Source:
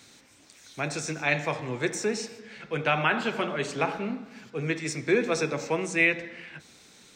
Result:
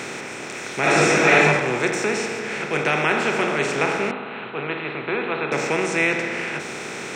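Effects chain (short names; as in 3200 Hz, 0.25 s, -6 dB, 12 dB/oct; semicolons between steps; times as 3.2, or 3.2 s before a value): per-bin compression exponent 0.4; 0.8–1.42 reverb throw, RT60 1.1 s, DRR -6.5 dB; 4.11–5.52 rippled Chebyshev low-pass 4100 Hz, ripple 6 dB; gain -1 dB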